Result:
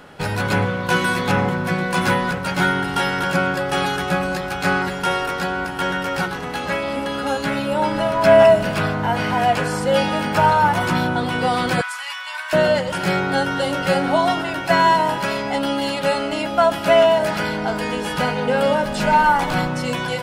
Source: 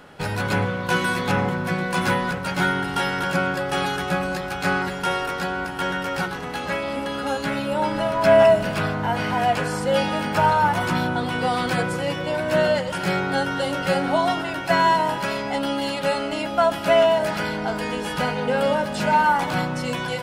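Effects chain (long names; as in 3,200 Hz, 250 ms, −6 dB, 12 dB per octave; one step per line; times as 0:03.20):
0:11.81–0:12.53: Butterworth high-pass 990 Hz 36 dB per octave
0:18.82–0:19.68: background noise brown −39 dBFS
level +3 dB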